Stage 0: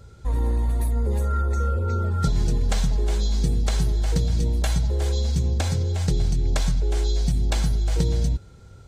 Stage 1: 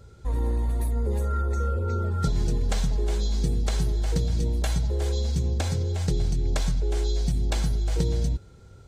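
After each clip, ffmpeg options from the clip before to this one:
-af "equalizer=f=390:t=o:w=0.85:g=3,volume=0.708"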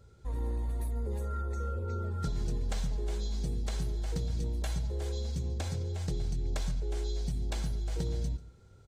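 -filter_complex "[0:a]asoftclip=type=hard:threshold=0.141,asplit=2[s0][s1];[s1]adelay=139.9,volume=0.126,highshelf=f=4000:g=-3.15[s2];[s0][s2]amix=inputs=2:normalize=0,volume=0.376"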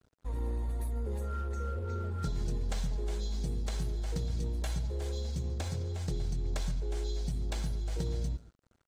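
-af "aeval=exprs='sgn(val(0))*max(abs(val(0))-0.00224,0)':c=same"

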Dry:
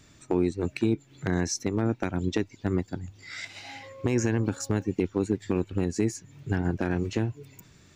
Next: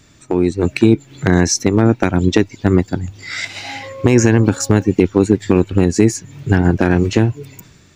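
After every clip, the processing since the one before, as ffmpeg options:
-af "dynaudnorm=f=110:g=9:m=2.37,volume=2.11"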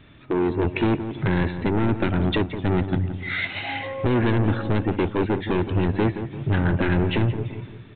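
-filter_complex "[0:a]aresample=8000,asoftclip=type=tanh:threshold=0.141,aresample=44100,asplit=2[s0][s1];[s1]adelay=171,lowpass=f=1300:p=1,volume=0.335,asplit=2[s2][s3];[s3]adelay=171,lowpass=f=1300:p=1,volume=0.48,asplit=2[s4][s5];[s5]adelay=171,lowpass=f=1300:p=1,volume=0.48,asplit=2[s6][s7];[s7]adelay=171,lowpass=f=1300:p=1,volume=0.48,asplit=2[s8][s9];[s9]adelay=171,lowpass=f=1300:p=1,volume=0.48[s10];[s0][s2][s4][s6][s8][s10]amix=inputs=6:normalize=0"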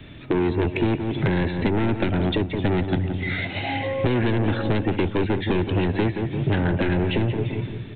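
-filter_complex "[0:a]equalizer=f=1200:t=o:w=0.91:g=-7,acrossover=split=170|380|1000[s0][s1][s2][s3];[s0]acompressor=threshold=0.02:ratio=4[s4];[s1]acompressor=threshold=0.0158:ratio=4[s5];[s2]acompressor=threshold=0.0141:ratio=4[s6];[s3]acompressor=threshold=0.0112:ratio=4[s7];[s4][s5][s6][s7]amix=inputs=4:normalize=0,volume=2.66"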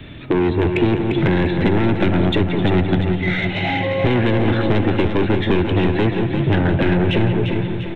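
-filter_complex "[0:a]asplit=2[s0][s1];[s1]asoftclip=type=tanh:threshold=0.0841,volume=0.447[s2];[s0][s2]amix=inputs=2:normalize=0,aecho=1:1:348|696|1044|1392|1740|2088:0.398|0.203|0.104|0.0528|0.0269|0.0137,volume=1.33"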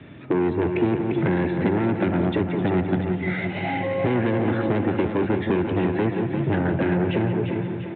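-af "highpass=120,lowpass=2000,volume=0.631"

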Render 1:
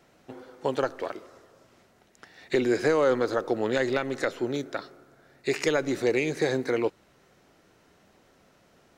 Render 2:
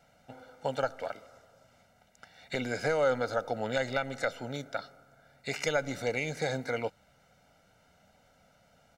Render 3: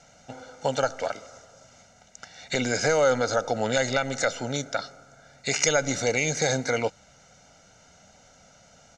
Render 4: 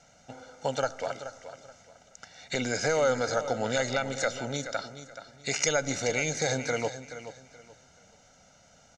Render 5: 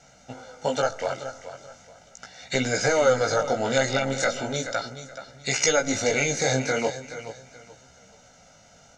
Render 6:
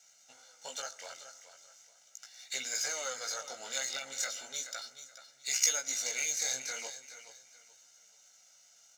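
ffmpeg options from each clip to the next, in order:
-af "aecho=1:1:1.4:0.84,volume=0.531"
-filter_complex "[0:a]asplit=2[s0][s1];[s1]alimiter=limit=0.0668:level=0:latency=1:release=35,volume=0.891[s2];[s0][s2]amix=inputs=2:normalize=0,lowpass=f=6500:t=q:w=4.6,volume=1.26"
-af "aecho=1:1:427|854|1281:0.251|0.0678|0.0183,volume=0.631"
-af "flanger=delay=15:depth=7.5:speed=0.38,volume=2.51"
-af "aeval=exprs='if(lt(val(0),0),0.708*val(0),val(0))':c=same,aderivative,bandreject=f=60:t=h:w=6,bandreject=f=120:t=h:w=6"

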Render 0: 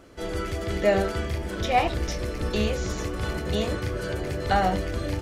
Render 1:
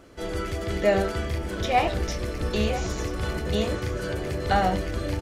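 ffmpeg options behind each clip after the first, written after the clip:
-af "aecho=1:1:989:0.211"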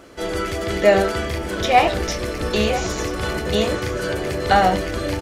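-af "lowshelf=f=180:g=-8.5,volume=2.51"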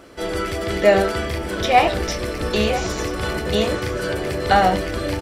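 -af "bandreject=f=6600:w=12"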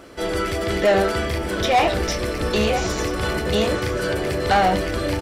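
-af "asoftclip=type=tanh:threshold=0.224,volume=1.19"

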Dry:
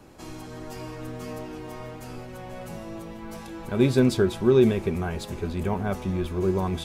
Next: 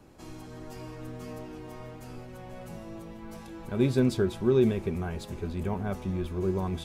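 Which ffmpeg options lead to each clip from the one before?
-af "lowshelf=f=360:g=3.5,volume=0.473"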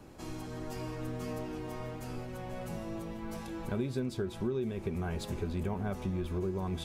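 -af "acompressor=threshold=0.0224:ratio=8,volume=1.33"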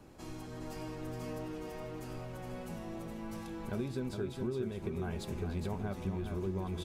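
-af "aecho=1:1:415:0.501,volume=0.668"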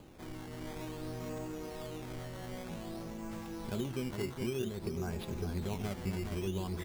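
-filter_complex "[0:a]acrossover=split=500[s0][s1];[s0]acompressor=mode=upward:threshold=0.00224:ratio=2.5[s2];[s2][s1]amix=inputs=2:normalize=0,acrusher=samples=12:mix=1:aa=0.000001:lfo=1:lforange=12:lforate=0.53"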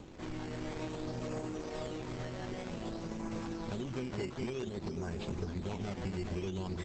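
-af "aeval=exprs='0.0335*(abs(mod(val(0)/0.0335+3,4)-2)-1)':c=same,acompressor=threshold=0.0126:ratio=16,volume=1.88" -ar 48000 -c:a libopus -b:a 12k

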